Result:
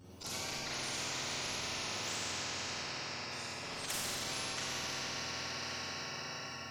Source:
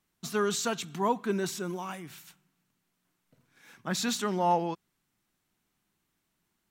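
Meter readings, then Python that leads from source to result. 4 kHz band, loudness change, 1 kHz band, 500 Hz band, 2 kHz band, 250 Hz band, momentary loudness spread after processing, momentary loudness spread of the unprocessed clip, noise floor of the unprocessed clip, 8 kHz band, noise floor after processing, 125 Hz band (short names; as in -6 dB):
+3.0 dB, -7.5 dB, -10.5 dB, -13.5 dB, +1.5 dB, -13.5 dB, 4 LU, 16 LU, -79 dBFS, 0.0 dB, -45 dBFS, -7.5 dB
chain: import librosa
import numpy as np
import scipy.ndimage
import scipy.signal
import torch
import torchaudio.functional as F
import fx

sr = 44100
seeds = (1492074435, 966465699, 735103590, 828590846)

y = fx.octave_mirror(x, sr, pivot_hz=980.0)
y = fx.echo_diffused(y, sr, ms=475, feedback_pct=42, wet_db=-13.0)
y = fx.auto_swell(y, sr, attack_ms=128.0)
y = fx.over_compress(y, sr, threshold_db=-35.0, ratio=-1.0)
y = fx.env_flanger(y, sr, rest_ms=11.5, full_db=-32.5)
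y = fx.rev_schroeder(y, sr, rt60_s=1.4, comb_ms=30, drr_db=-7.5)
y = fx.spectral_comp(y, sr, ratio=10.0)
y = y * 10.0 ** (-6.0 / 20.0)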